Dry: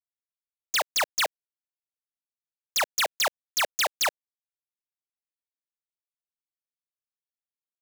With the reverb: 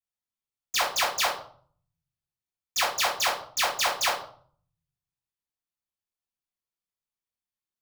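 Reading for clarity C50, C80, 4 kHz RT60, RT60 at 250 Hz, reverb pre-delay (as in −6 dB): 6.0 dB, 10.5 dB, 0.40 s, 0.85 s, 3 ms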